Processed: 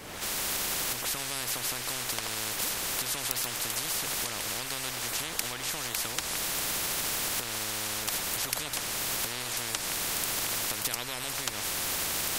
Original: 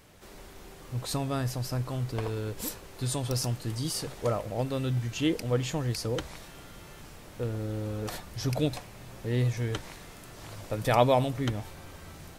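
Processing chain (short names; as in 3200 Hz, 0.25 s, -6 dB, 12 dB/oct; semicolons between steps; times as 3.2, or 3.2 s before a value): recorder AGC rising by 45 dB/s; spectral compressor 10:1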